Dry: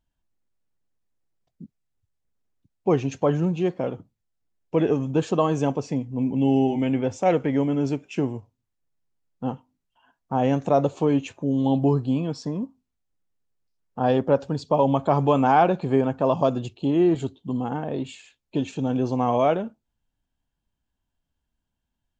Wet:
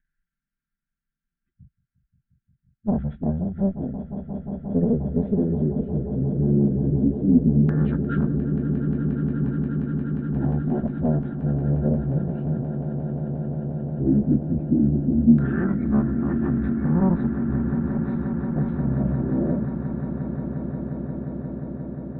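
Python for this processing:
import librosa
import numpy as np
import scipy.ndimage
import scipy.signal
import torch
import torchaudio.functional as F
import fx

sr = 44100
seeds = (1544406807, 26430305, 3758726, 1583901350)

p1 = fx.pitch_bins(x, sr, semitones=-11.0)
p2 = scipy.signal.sosfilt(scipy.signal.ellip(3, 1.0, 40, [290.0, 1600.0], 'bandstop', fs=sr, output='sos'), p1)
p3 = fx.high_shelf(p2, sr, hz=3400.0, db=7.5)
p4 = p3 + 0.84 * np.pad(p3, (int(5.1 * sr / 1000.0), 0))[:len(p3)]
p5 = np.clip(p4, -10.0 ** (-27.0 / 20.0), 10.0 ** (-27.0 / 20.0))
p6 = p4 + F.gain(torch.from_numpy(p5), -3.0).numpy()
p7 = fx.tube_stage(p6, sr, drive_db=14.0, bias=0.55)
p8 = fx.filter_lfo_lowpass(p7, sr, shape='saw_down', hz=0.13, low_hz=250.0, high_hz=1500.0, q=3.9)
p9 = fx.echo_swell(p8, sr, ms=177, loudest=8, wet_db=-13.5)
y = F.gain(torch.from_numpy(p9), -1.5).numpy()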